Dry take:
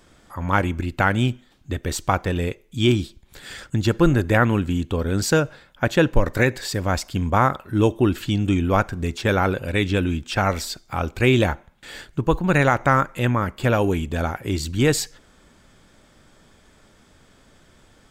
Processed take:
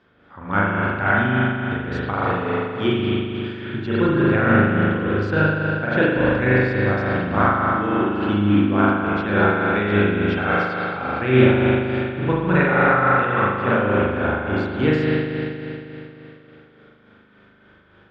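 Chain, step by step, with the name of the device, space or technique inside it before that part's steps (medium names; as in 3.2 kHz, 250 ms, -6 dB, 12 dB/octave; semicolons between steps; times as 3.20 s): 7.41–8.15 s: bass shelf 490 Hz -5.5 dB; combo amplifier with spring reverb and tremolo (spring tank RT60 3.1 s, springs 39 ms, chirp 75 ms, DRR -8.5 dB; tremolo 3.5 Hz, depth 44%; cabinet simulation 80–3800 Hz, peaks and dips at 220 Hz +4 dB, 400 Hz +4 dB, 1.5 kHz +7 dB); trim -6.5 dB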